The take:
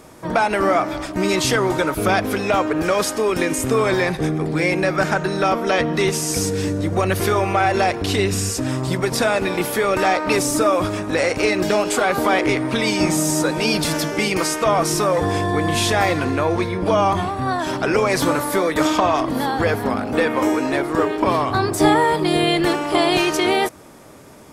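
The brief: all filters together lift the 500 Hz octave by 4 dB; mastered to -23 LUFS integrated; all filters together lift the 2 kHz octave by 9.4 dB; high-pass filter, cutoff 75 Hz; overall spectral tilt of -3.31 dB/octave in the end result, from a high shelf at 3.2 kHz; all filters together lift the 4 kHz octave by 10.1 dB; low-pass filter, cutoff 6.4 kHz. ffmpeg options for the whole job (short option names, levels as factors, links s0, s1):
-af "highpass=75,lowpass=6400,equalizer=f=500:t=o:g=4.5,equalizer=f=2000:t=o:g=8,highshelf=f=3200:g=4,equalizer=f=4000:t=o:g=8,volume=0.355"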